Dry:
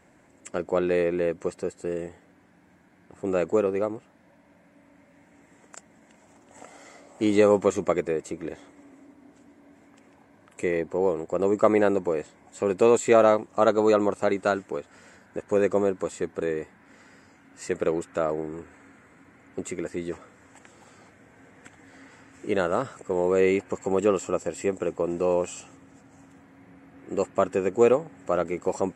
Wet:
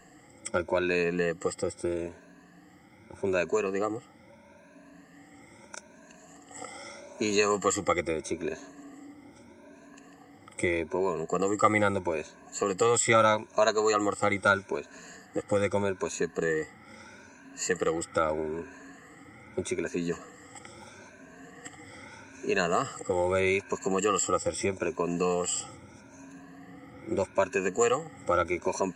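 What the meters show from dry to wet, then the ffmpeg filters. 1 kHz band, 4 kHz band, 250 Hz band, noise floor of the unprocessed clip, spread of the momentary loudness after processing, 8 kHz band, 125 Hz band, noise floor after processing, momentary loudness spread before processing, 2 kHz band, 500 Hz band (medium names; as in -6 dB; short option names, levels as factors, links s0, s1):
+0.5 dB, +6.0 dB, -4.5 dB, -58 dBFS, 21 LU, +7.5 dB, -0.5 dB, -55 dBFS, 15 LU, +4.0 dB, -5.0 dB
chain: -filter_complex "[0:a]afftfilt=real='re*pow(10,18/40*sin(2*PI*(1.5*log(max(b,1)*sr/1024/100)/log(2)-(0.79)*(pts-256)/sr)))':imag='im*pow(10,18/40*sin(2*PI*(1.5*log(max(b,1)*sr/1024/100)/log(2)-(0.79)*(pts-256)/sr)))':win_size=1024:overlap=0.75,equalizer=f=5600:w=1.4:g=5.5,acrossover=split=130|940[s0][s1][s2];[s1]acompressor=threshold=0.0447:ratio=6[s3];[s0][s3][s2]amix=inputs=3:normalize=0"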